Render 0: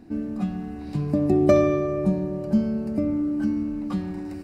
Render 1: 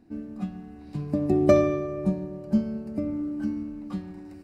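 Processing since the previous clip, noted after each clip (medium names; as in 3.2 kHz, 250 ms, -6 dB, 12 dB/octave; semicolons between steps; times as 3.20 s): upward expansion 1.5:1, over -32 dBFS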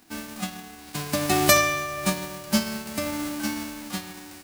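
formants flattened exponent 0.3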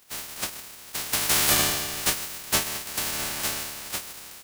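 spectral peaks clipped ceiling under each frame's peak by 28 dB; loudness maximiser +8 dB; trim -8 dB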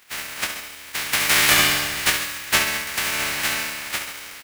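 peaking EQ 2 kHz +11 dB 1.7 oct; feedback delay 68 ms, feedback 53%, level -8 dB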